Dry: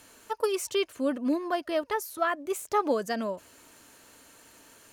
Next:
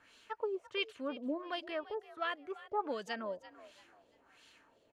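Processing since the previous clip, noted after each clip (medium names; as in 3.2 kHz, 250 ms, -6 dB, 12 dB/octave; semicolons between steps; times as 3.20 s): pre-emphasis filter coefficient 0.8; LFO low-pass sine 1.4 Hz 550–3500 Hz; frequency-shifting echo 340 ms, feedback 33%, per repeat +56 Hz, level -17 dB; trim +1 dB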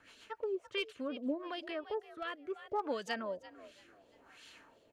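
in parallel at +0.5 dB: compression 8:1, threshold -45 dBFS, peak gain reduction 15.5 dB; on the sum: hard clipper -25 dBFS, distortion -31 dB; rotary cabinet horn 7.5 Hz, later 0.7 Hz, at 1.21 s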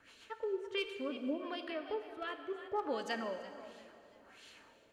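plate-style reverb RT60 2.5 s, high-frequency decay 0.8×, DRR 7 dB; trim -1 dB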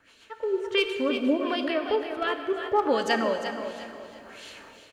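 level rider gain up to 11 dB; on a send: feedback delay 353 ms, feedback 31%, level -10 dB; on the sum: trim +2 dB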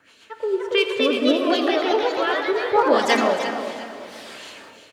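high-pass 100 Hz 12 dB/octave; ever faster or slower copies 329 ms, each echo +2 st, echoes 3; trim +4 dB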